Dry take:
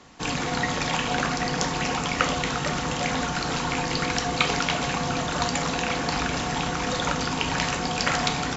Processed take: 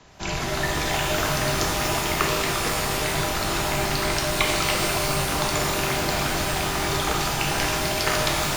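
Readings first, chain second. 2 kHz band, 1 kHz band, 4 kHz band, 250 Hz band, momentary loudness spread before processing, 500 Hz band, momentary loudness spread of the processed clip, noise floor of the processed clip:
+1.5 dB, +0.5 dB, +2.5 dB, −1.0 dB, 3 LU, +3.5 dB, 2 LU, −27 dBFS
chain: frequency shifter −110 Hz
reverb with rising layers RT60 2.3 s, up +12 semitones, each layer −2 dB, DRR 1.5 dB
level −1.5 dB

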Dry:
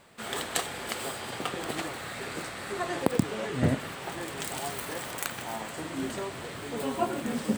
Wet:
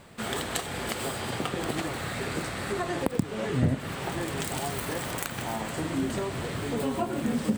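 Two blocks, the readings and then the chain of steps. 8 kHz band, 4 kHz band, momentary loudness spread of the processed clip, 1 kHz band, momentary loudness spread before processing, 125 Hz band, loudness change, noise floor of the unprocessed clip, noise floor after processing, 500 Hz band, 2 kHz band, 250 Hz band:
+0.5 dB, +1.0 dB, 4 LU, +1.0 dB, 8 LU, +4.0 dB, +2.0 dB, −40 dBFS, −37 dBFS, +2.0 dB, +1.0 dB, +3.0 dB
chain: downward compressor 3 to 1, threshold −33 dBFS, peak gain reduction 12 dB
low-shelf EQ 250 Hz +9.5 dB
level +3.5 dB

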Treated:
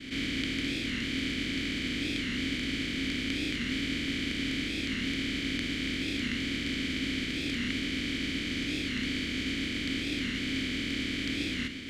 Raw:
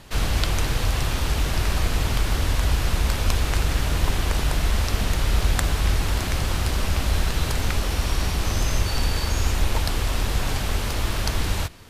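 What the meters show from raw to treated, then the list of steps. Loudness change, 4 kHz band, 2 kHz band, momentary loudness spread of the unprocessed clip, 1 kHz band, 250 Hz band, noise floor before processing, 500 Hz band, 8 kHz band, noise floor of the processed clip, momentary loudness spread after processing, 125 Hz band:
−7.0 dB, −2.5 dB, −2.0 dB, 2 LU, −20.5 dB, +2.0 dB, −27 dBFS, −10.5 dB, −13.5 dB, −35 dBFS, 1 LU, −17.0 dB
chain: compressor on every frequency bin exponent 0.2
formant filter i
downward expander −33 dBFS
wow of a warped record 45 rpm, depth 160 cents
level +3.5 dB

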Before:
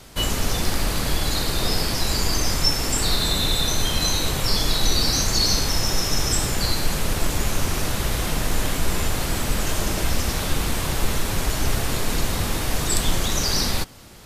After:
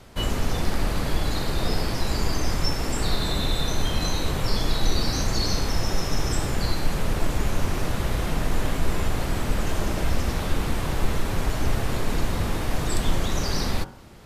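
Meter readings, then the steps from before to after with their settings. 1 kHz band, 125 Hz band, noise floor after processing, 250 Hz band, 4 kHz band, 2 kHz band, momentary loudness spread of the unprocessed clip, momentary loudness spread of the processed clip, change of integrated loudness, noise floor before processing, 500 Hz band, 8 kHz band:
−2.0 dB, −0.5 dB, −29 dBFS, −0.5 dB, −8.0 dB, −4.0 dB, 5 LU, 3 LU, −4.5 dB, −26 dBFS, −1.0 dB, −10.0 dB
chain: high-shelf EQ 2,800 Hz −11.5 dB
hum removal 46.33 Hz, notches 36

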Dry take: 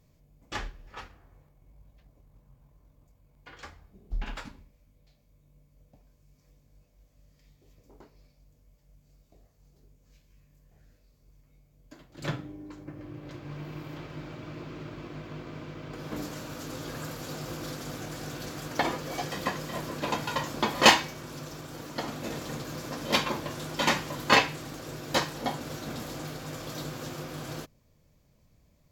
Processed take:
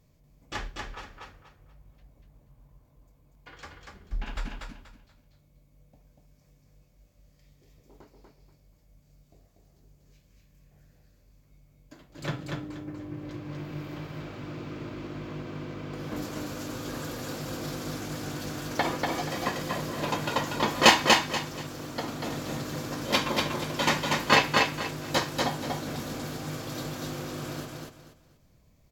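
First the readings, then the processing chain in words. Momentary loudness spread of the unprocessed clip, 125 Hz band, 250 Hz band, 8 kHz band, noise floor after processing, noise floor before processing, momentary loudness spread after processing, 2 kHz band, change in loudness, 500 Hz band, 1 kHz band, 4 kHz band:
16 LU, +2.5 dB, +3.0 dB, +2.0 dB, −63 dBFS, −65 dBFS, 17 LU, +2.0 dB, +2.0 dB, +2.0 dB, +2.0 dB, +2.0 dB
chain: repeating echo 240 ms, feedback 27%, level −3 dB

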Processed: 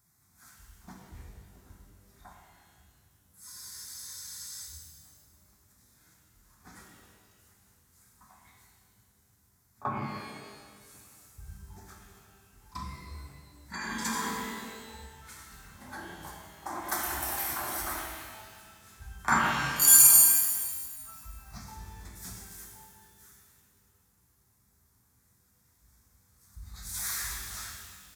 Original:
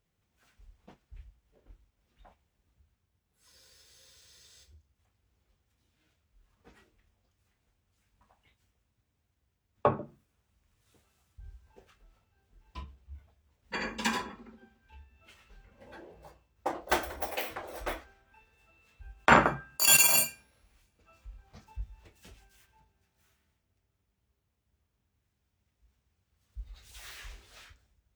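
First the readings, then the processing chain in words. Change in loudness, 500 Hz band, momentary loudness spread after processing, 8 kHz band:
+2.5 dB, −9.5 dB, 26 LU, +7.0 dB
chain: downsampling to 32,000 Hz
high-shelf EQ 4,100 Hz +10.5 dB
in parallel at +1.5 dB: compressor whose output falls as the input rises −42 dBFS, ratio −1
on the sum: high-pass filter 80 Hz 12 dB per octave
high-shelf EQ 11,000 Hz +3.5 dB
phaser with its sweep stopped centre 1,200 Hz, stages 4
on a send: backwards echo 35 ms −19.5 dB
on the sum: reverb with rising layers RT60 1.7 s, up +12 semitones, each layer −8 dB, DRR −0.5 dB
level −5.5 dB

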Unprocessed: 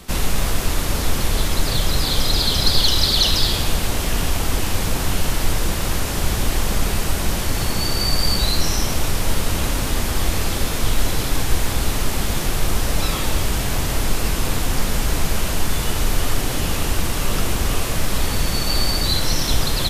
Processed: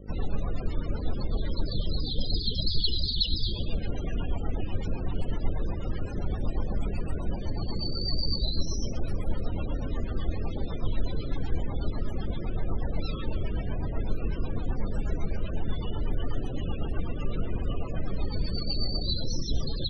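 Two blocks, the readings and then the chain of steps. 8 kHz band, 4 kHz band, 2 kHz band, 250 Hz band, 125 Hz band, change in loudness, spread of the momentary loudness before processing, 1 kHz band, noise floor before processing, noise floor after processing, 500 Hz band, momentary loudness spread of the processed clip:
−27.0 dB, −12.5 dB, −21.5 dB, −8.5 dB, −8.0 dB, −11.5 dB, 5 LU, −17.0 dB, −23 dBFS, −33 dBFS, −10.0 dB, 6 LU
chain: hum with harmonics 50 Hz, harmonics 11, −36 dBFS −4 dB per octave
rotating-speaker cabinet horn 8 Hz
spectral peaks only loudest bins 32
level −7 dB

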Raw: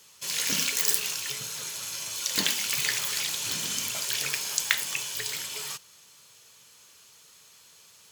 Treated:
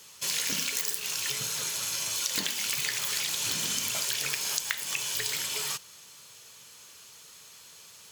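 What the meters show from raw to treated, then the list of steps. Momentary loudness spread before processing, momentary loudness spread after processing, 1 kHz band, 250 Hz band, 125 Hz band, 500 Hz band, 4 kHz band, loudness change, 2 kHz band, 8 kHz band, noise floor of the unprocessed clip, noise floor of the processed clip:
9 LU, 21 LU, −0.5 dB, −2.5 dB, −0.5 dB, −0.5 dB, −1.0 dB, −1.5 dB, −2.0 dB, −0.5 dB, −56 dBFS, −52 dBFS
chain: downward compressor 12 to 1, threshold −30 dBFS, peak gain reduction 13.5 dB
level +4 dB

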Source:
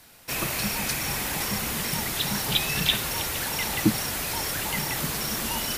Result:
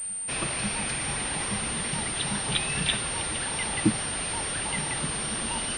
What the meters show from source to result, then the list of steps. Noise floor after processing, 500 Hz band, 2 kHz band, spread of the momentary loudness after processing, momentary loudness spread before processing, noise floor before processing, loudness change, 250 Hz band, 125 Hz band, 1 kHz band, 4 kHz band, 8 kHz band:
−32 dBFS, −1.5 dB, −1.5 dB, 3 LU, 4 LU, −33 dBFS, −1.5 dB, −1.5 dB, −1.5 dB, −1.5 dB, −3.5 dB, +2.5 dB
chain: on a send: backwards echo 545 ms −22 dB
on the sum: switching amplifier with a slow clock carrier 8,900 Hz
level −1.5 dB

